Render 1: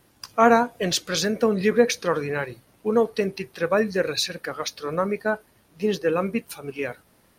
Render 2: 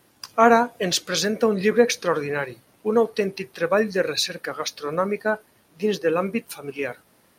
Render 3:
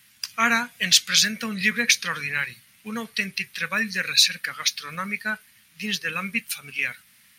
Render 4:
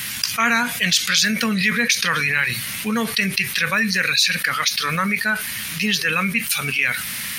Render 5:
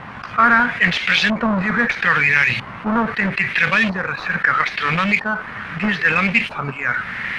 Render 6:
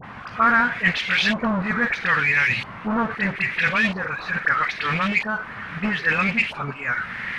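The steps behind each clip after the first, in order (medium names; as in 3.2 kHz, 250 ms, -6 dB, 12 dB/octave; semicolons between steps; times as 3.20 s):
high-pass 150 Hz 6 dB/octave; trim +1.5 dB
FFT filter 220 Hz 0 dB, 340 Hz -18 dB, 780 Hz -11 dB, 2.1 kHz +14 dB, 4.7 kHz +11 dB; trim -4.5 dB
level flattener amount 70%; trim -2.5 dB
square wave that keeps the level; LFO low-pass saw up 0.77 Hz 960–2900 Hz; trim -3 dB
phase dispersion highs, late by 40 ms, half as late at 1.4 kHz; trim -4 dB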